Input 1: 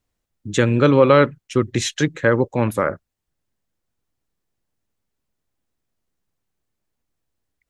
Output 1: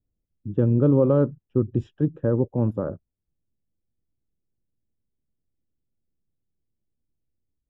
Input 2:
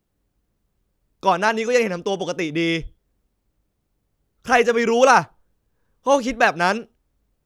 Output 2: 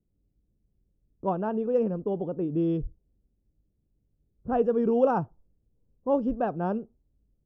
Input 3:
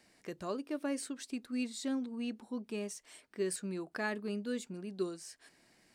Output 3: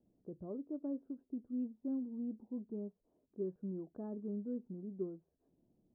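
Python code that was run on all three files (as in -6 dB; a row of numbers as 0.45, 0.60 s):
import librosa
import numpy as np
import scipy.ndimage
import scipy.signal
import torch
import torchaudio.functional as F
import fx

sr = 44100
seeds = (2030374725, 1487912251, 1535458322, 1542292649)

y = np.convolve(x, np.full(21, 1.0 / 21))[:len(x)]
y = fx.tilt_shelf(y, sr, db=8.5, hz=700.0)
y = fx.env_lowpass(y, sr, base_hz=600.0, full_db=-10.5)
y = F.gain(torch.from_numpy(y), -8.5).numpy()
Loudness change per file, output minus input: -5.0, -8.5, -4.0 LU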